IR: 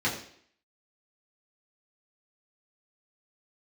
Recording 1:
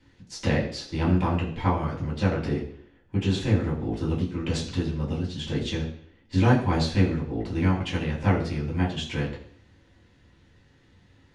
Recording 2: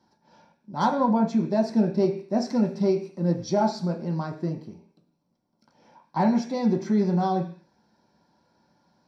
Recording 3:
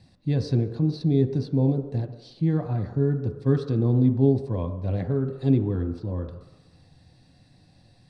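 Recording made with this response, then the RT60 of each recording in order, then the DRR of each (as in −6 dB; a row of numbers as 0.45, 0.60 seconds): 1; 0.60, 0.45, 1.0 seconds; −6.0, 1.5, 6.0 decibels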